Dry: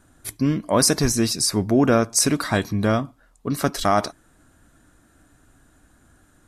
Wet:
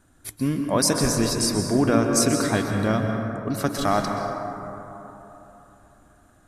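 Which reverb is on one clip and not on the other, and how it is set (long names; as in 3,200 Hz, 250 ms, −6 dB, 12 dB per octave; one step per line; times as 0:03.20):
dense smooth reverb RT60 3.5 s, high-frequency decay 0.3×, pre-delay 115 ms, DRR 2.5 dB
level −3.5 dB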